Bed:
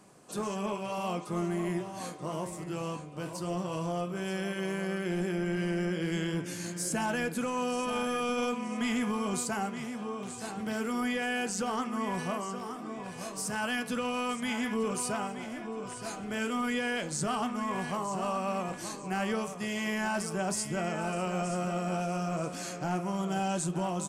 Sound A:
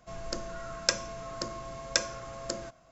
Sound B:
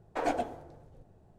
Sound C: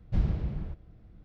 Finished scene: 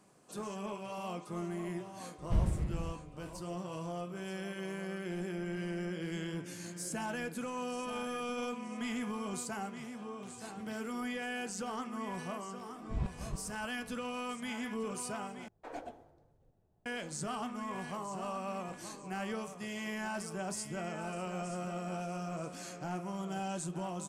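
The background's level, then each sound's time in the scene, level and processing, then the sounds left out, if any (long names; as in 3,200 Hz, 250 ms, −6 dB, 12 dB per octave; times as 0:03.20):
bed −7 dB
0:02.18: mix in C −3 dB
0:12.77: mix in C −2 dB + tremolo with a ramp in dB swelling 3.4 Hz, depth 26 dB
0:15.48: overwrite with B −14 dB
not used: A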